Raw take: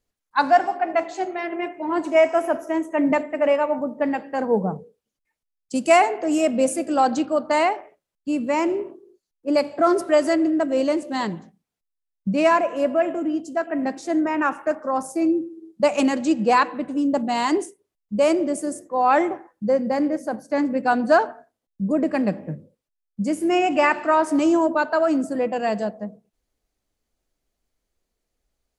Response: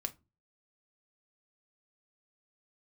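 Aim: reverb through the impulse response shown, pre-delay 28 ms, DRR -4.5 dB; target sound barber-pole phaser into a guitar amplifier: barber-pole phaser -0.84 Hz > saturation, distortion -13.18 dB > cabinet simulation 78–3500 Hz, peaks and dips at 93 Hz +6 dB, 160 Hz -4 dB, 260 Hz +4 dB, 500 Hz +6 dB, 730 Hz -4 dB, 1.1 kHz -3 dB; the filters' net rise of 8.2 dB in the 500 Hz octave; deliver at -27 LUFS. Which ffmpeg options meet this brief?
-filter_complex "[0:a]equalizer=f=500:t=o:g=8.5,asplit=2[s0][s1];[1:a]atrim=start_sample=2205,adelay=28[s2];[s1][s2]afir=irnorm=-1:irlink=0,volume=1.78[s3];[s0][s3]amix=inputs=2:normalize=0,asplit=2[s4][s5];[s5]afreqshift=-0.84[s6];[s4][s6]amix=inputs=2:normalize=1,asoftclip=threshold=0.596,highpass=78,equalizer=f=93:t=q:w=4:g=6,equalizer=f=160:t=q:w=4:g=-4,equalizer=f=260:t=q:w=4:g=4,equalizer=f=500:t=q:w=4:g=6,equalizer=f=730:t=q:w=4:g=-4,equalizer=f=1100:t=q:w=4:g=-3,lowpass=f=3500:w=0.5412,lowpass=f=3500:w=1.3066,volume=0.237"

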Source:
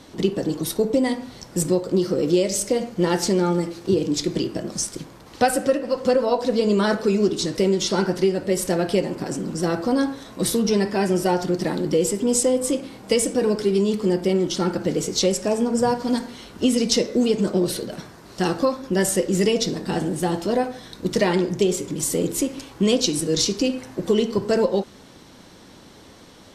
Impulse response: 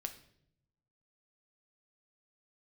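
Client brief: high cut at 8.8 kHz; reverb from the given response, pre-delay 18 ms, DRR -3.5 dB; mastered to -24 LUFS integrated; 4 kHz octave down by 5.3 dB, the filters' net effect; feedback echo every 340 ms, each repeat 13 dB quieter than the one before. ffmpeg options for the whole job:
-filter_complex "[0:a]lowpass=8800,equalizer=f=4000:t=o:g=-7,aecho=1:1:340|680|1020:0.224|0.0493|0.0108,asplit=2[s0][s1];[1:a]atrim=start_sample=2205,adelay=18[s2];[s1][s2]afir=irnorm=-1:irlink=0,volume=1.88[s3];[s0][s3]amix=inputs=2:normalize=0,volume=0.473"

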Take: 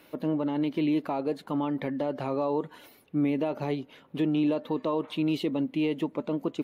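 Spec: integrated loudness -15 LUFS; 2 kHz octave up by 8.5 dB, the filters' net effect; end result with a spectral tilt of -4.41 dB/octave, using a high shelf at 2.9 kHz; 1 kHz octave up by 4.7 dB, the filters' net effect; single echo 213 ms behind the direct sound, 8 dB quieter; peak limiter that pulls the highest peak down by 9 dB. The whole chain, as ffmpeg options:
-af "equalizer=f=1000:t=o:g=3.5,equalizer=f=2000:t=o:g=6.5,highshelf=f=2900:g=8,alimiter=limit=0.0708:level=0:latency=1,aecho=1:1:213:0.398,volume=7.5"

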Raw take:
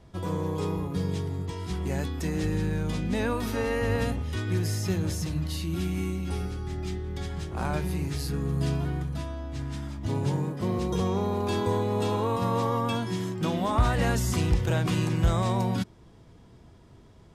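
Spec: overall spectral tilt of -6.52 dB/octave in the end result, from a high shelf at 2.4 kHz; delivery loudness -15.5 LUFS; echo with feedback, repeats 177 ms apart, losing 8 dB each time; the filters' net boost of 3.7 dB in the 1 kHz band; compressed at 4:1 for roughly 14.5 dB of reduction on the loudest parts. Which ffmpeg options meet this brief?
-af "equalizer=f=1000:t=o:g=5,highshelf=f=2400:g=-3.5,acompressor=threshold=0.0178:ratio=4,aecho=1:1:177|354|531|708|885:0.398|0.159|0.0637|0.0255|0.0102,volume=11.9"

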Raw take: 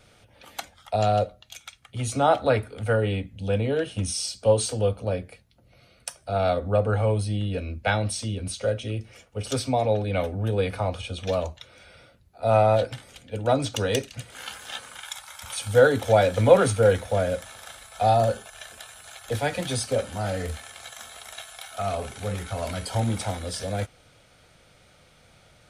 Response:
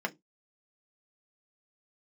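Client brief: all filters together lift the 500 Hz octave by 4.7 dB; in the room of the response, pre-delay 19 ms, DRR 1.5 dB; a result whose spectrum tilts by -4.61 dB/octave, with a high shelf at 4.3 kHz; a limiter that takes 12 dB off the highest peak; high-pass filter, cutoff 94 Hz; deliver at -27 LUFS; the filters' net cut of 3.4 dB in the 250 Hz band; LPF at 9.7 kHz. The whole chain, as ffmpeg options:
-filter_complex "[0:a]highpass=94,lowpass=9700,equalizer=f=250:t=o:g=-6,equalizer=f=500:t=o:g=6.5,highshelf=f=4300:g=-3.5,alimiter=limit=0.299:level=0:latency=1,asplit=2[s0][s1];[1:a]atrim=start_sample=2205,adelay=19[s2];[s1][s2]afir=irnorm=-1:irlink=0,volume=0.422[s3];[s0][s3]amix=inputs=2:normalize=0,volume=0.501"

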